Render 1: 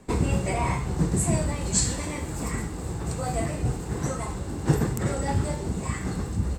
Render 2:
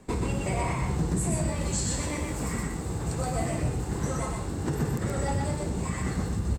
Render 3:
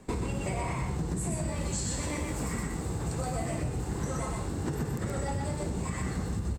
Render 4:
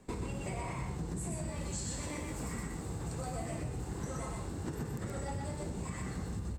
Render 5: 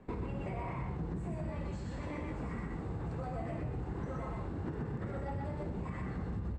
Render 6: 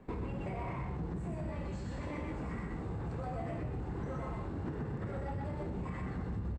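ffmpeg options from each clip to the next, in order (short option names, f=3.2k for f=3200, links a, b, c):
-filter_complex "[0:a]alimiter=limit=-18.5dB:level=0:latency=1:release=106,asplit=2[a][b];[b]aecho=0:1:124:0.708[c];[a][c]amix=inputs=2:normalize=0,volume=-1.5dB"
-af "acompressor=threshold=-28dB:ratio=6"
-af "bandreject=f=71.66:t=h:w=4,bandreject=f=143.32:t=h:w=4,bandreject=f=214.98:t=h:w=4,bandreject=f=286.64:t=h:w=4,bandreject=f=358.3:t=h:w=4,bandreject=f=429.96:t=h:w=4,bandreject=f=501.62:t=h:w=4,bandreject=f=573.28:t=h:w=4,bandreject=f=644.94:t=h:w=4,bandreject=f=716.6:t=h:w=4,bandreject=f=788.26:t=h:w=4,bandreject=f=859.92:t=h:w=4,bandreject=f=931.58:t=h:w=4,bandreject=f=1.00324k:t=h:w=4,bandreject=f=1.0749k:t=h:w=4,bandreject=f=1.14656k:t=h:w=4,bandreject=f=1.21822k:t=h:w=4,bandreject=f=1.28988k:t=h:w=4,bandreject=f=1.36154k:t=h:w=4,bandreject=f=1.4332k:t=h:w=4,bandreject=f=1.50486k:t=h:w=4,bandreject=f=1.57652k:t=h:w=4,bandreject=f=1.64818k:t=h:w=4,bandreject=f=1.71984k:t=h:w=4,bandreject=f=1.7915k:t=h:w=4,bandreject=f=1.86316k:t=h:w=4,bandreject=f=1.93482k:t=h:w=4,bandreject=f=2.00648k:t=h:w=4,bandreject=f=2.07814k:t=h:w=4,bandreject=f=2.1498k:t=h:w=4,bandreject=f=2.22146k:t=h:w=4,bandreject=f=2.29312k:t=h:w=4,bandreject=f=2.36478k:t=h:w=4,bandreject=f=2.43644k:t=h:w=4,volume=-6dB"
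-filter_complex "[0:a]asplit=2[a][b];[b]alimiter=level_in=11dB:limit=-24dB:level=0:latency=1:release=101,volume=-11dB,volume=2.5dB[c];[a][c]amix=inputs=2:normalize=0,lowpass=2.1k,volume=-4.5dB"
-filter_complex "[0:a]asplit=2[a][b];[b]adelay=28,volume=-12dB[c];[a][c]amix=inputs=2:normalize=0,asplit=2[d][e];[e]asoftclip=type=hard:threshold=-37dB,volume=-7dB[f];[d][f]amix=inputs=2:normalize=0,volume=-2.5dB"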